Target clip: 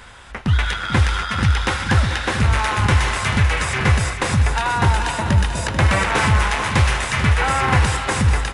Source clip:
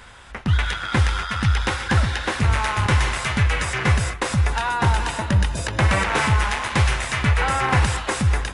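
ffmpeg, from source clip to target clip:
-filter_complex "[0:a]asplit=2[a][b];[b]asoftclip=type=hard:threshold=-16.5dB,volume=-9.5dB[c];[a][c]amix=inputs=2:normalize=0,aecho=1:1:439|878|1317|1756|2195:0.316|0.149|0.0699|0.0328|0.0154"

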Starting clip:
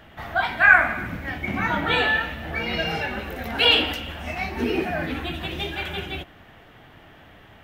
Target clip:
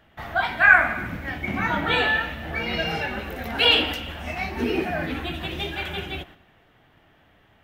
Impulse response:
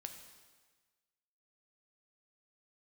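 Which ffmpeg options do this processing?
-filter_complex "[0:a]agate=range=-9dB:threshold=-45dB:ratio=16:detection=peak,asplit=2[a][b];[1:a]atrim=start_sample=2205[c];[b][c]afir=irnorm=-1:irlink=0,volume=-12dB[d];[a][d]amix=inputs=2:normalize=0,volume=-1.5dB"

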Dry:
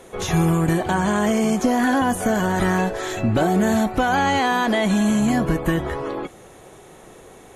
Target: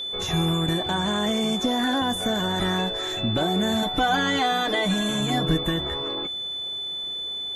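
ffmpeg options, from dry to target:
-filter_complex "[0:a]asettb=1/sr,asplit=3[a][b][c];[a]atrim=end=3.824[d];[b]atrim=start=3.82:end=5.63,asetpts=PTS-STARTPTS,afade=t=in:d=0.004:c=qsin,afade=t=out:st=1.806:d=0.004:c=qsin,aecho=1:1:6.6:0.9,atrim=end_sample=79821[e];[c]atrim=start=5.626[f];[d][e]acrossfade=d=0.004:c1=hsin:c2=qsin[g];[g][f]acrossfade=d=0.004:c1=qsin:c2=hsin,aeval=exprs='val(0)+0.0708*sin(2*PI*3500*n/s)':c=same,volume=-5.5dB"

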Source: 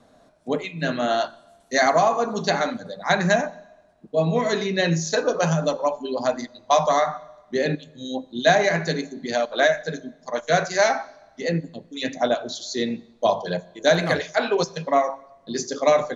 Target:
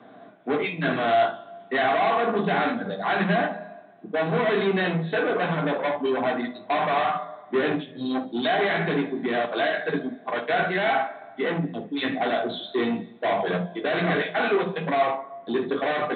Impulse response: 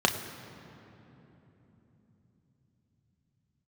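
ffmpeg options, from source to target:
-filter_complex "[0:a]alimiter=limit=-12.5dB:level=0:latency=1,aresample=8000,asoftclip=type=tanh:threshold=-28.5dB,aresample=44100[a];[1:a]atrim=start_sample=2205,afade=t=out:st=0.2:d=0.01,atrim=end_sample=9261,asetrate=83790,aresample=44100[b];[a][b]afir=irnorm=-1:irlink=0"

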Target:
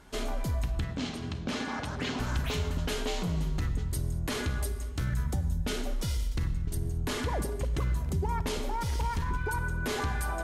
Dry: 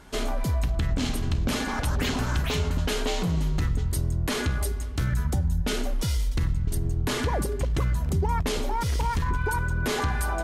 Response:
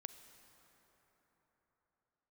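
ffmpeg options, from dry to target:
-filter_complex "[0:a]asettb=1/sr,asplit=3[a][b][c];[a]atrim=end=0.844[d];[b]atrim=start=0.84:end=2.2,asetpts=PTS-STARTPTS,afade=t=in:d=0.004:c=qsin,afade=t=out:st=1.356:d=0.004:c=qsin,highpass=110,lowpass=6.1k[e];[c]atrim=start=2.196[f];[d][e]acrossfade=d=0.004:c1=hsin:c2=qsin[g];[g][f]acrossfade=d=0.004:c1=qsin:c2=hsin[h];[1:a]atrim=start_sample=2205,afade=t=out:st=0.27:d=0.01,atrim=end_sample=12348,asetrate=41895,aresample=44100[i];[h][i]afir=irnorm=-1:irlink=0"

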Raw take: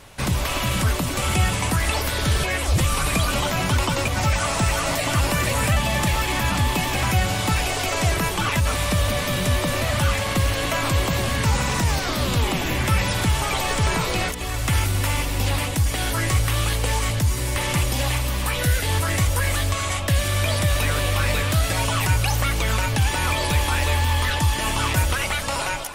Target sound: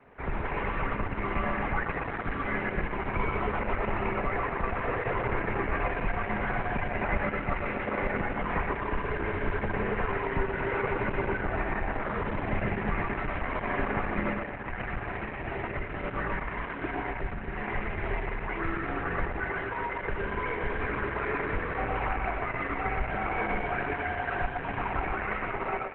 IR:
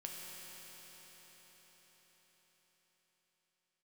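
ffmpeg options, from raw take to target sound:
-filter_complex "[0:a]asettb=1/sr,asplit=3[a][b][c];[a]atrim=end=7.524[d];[b]atrim=start=7.52:end=7.99,asetpts=PTS-STARTPTS,afade=t=in:d=0.004:c=qsin,afade=t=out:st=0.466:d=0.004:c=qsin,highpass=57[e];[c]atrim=start=7.986[f];[d][e]acrossfade=d=0.004:c1=hsin:c2=qsin[g];[g][f]acrossfade=d=0.004:c1=qsin:c2=hsin,adynamicequalizer=threshold=0.02:dfrequency=130:dqfactor=2.4:tfrequency=130:tqfactor=2.4:attack=5:release=100:ratio=0.375:range=2.5:mode=boostabove:tftype=bell,aeval=exprs='0.501*(cos(1*acos(clip(val(0)/0.501,-1,1)))-cos(1*PI/2))+0.0178*(cos(4*acos(clip(val(0)/0.501,-1,1)))-cos(4*PI/2))':c=same,aecho=1:1:120|240|360|480|600|720|840|960:0.708|0.411|0.238|0.138|0.0801|0.0465|0.027|0.0156[h];[1:a]atrim=start_sample=2205,atrim=end_sample=4410[i];[h][i]afir=irnorm=-1:irlink=0,highpass=f=160:t=q:w=0.5412,highpass=f=160:t=q:w=1.307,lowpass=f=2.3k:t=q:w=0.5176,lowpass=f=2.3k:t=q:w=0.7071,lowpass=f=2.3k:t=q:w=1.932,afreqshift=-160" -ar 48000 -c:a libopus -b:a 8k

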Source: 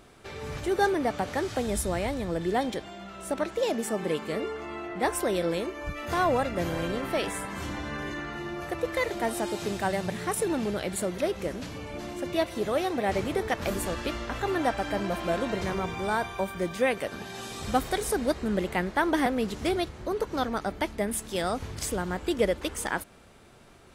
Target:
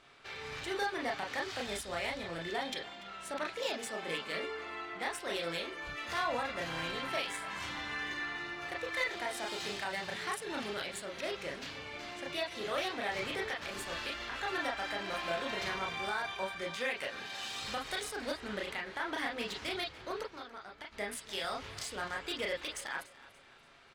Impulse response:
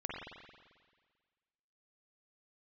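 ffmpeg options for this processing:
-filter_complex "[0:a]tiltshelf=f=890:g=-10,asplit=3[a][b][c];[a]afade=t=out:st=20.22:d=0.02[d];[b]acompressor=threshold=-39dB:ratio=6,afade=t=in:st=20.22:d=0.02,afade=t=out:st=20.91:d=0.02[e];[c]afade=t=in:st=20.91:d=0.02[f];[d][e][f]amix=inputs=3:normalize=0,alimiter=limit=-18.5dB:level=0:latency=1:release=145,adynamicsmooth=sensitivity=4.5:basefreq=4.1k,aecho=1:1:289|578|867:0.112|0.0438|0.0171[g];[1:a]atrim=start_sample=2205,atrim=end_sample=3528,asetrate=66150,aresample=44100[h];[g][h]afir=irnorm=-1:irlink=0"

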